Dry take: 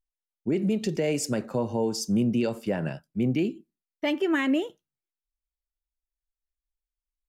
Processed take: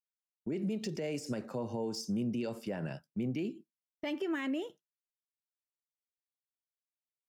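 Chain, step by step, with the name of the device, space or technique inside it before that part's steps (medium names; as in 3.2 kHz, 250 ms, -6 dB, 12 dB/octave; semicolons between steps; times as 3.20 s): broadcast voice chain (high-pass 85 Hz; de-esser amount 75%; compression, threshold -25 dBFS, peak gain reduction 5 dB; peaking EQ 5.3 kHz +5.5 dB 0.26 oct; peak limiter -22.5 dBFS, peak gain reduction 4.5 dB); gate with hold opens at -37 dBFS; trim -5 dB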